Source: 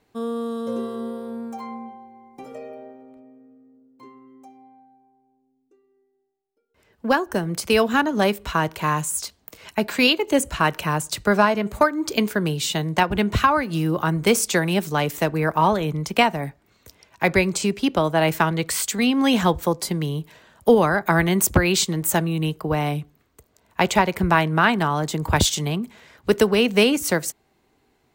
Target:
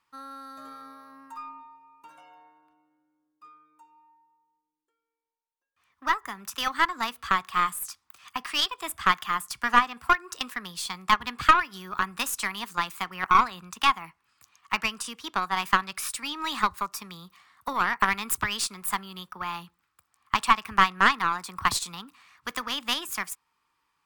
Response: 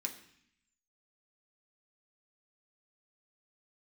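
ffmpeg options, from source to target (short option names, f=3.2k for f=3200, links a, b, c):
-af "asetrate=51597,aresample=44100,lowshelf=f=780:t=q:w=3:g=-11.5,aeval=exprs='0.944*(cos(1*acos(clip(val(0)/0.944,-1,1)))-cos(1*PI/2))+0.422*(cos(2*acos(clip(val(0)/0.944,-1,1)))-cos(2*PI/2))+0.0841*(cos(4*acos(clip(val(0)/0.944,-1,1)))-cos(4*PI/2))+0.0266*(cos(6*acos(clip(val(0)/0.944,-1,1)))-cos(6*PI/2))+0.0376*(cos(7*acos(clip(val(0)/0.944,-1,1)))-cos(7*PI/2))':c=same,volume=-5.5dB"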